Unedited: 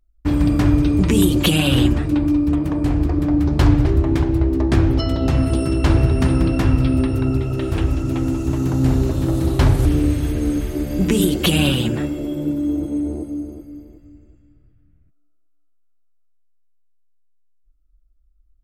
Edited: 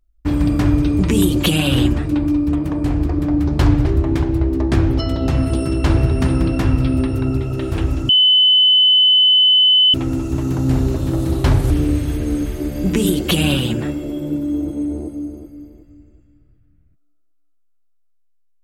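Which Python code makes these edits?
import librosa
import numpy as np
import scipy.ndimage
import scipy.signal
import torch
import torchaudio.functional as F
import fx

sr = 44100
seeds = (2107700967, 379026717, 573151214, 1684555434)

y = fx.edit(x, sr, fx.insert_tone(at_s=8.09, length_s=1.85, hz=3020.0, db=-8.5), tone=tone)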